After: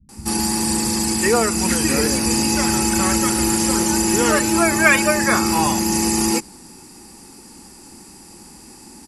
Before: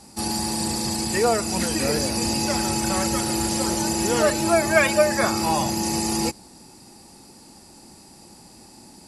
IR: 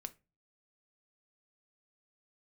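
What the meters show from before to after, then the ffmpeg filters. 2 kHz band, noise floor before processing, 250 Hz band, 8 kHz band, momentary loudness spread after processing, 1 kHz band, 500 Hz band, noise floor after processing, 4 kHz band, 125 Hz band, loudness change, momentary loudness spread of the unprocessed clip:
+6.5 dB, −48 dBFS, +6.0 dB, +6.5 dB, 4 LU, +3.5 dB, +0.5 dB, −43 dBFS, +3.0 dB, +3.0 dB, +4.5 dB, 6 LU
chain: -filter_complex "[0:a]equalizer=frequency=100:width_type=o:width=0.67:gain=-6,equalizer=frequency=630:width_type=o:width=0.67:gain=-11,equalizer=frequency=4000:width_type=o:width=0.67:gain=-7,acrossover=split=160[link_01][link_02];[link_02]adelay=90[link_03];[link_01][link_03]amix=inputs=2:normalize=0,volume=7.5dB"

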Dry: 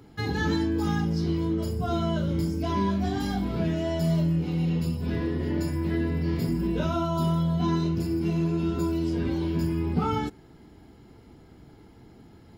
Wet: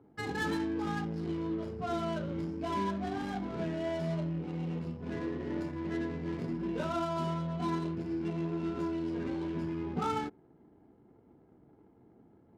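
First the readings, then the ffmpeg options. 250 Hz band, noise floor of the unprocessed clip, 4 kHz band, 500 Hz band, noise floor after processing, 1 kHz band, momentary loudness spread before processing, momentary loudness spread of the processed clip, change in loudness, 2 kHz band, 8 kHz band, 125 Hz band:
−8.0 dB, −52 dBFS, −8.5 dB, −5.5 dB, −62 dBFS, −4.0 dB, 3 LU, 4 LU, −8.0 dB, −4.0 dB, can't be measured, −12.0 dB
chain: -af "highpass=frequency=370:poles=1,adynamicsmooth=sensitivity=8:basefreq=640,volume=-3dB"

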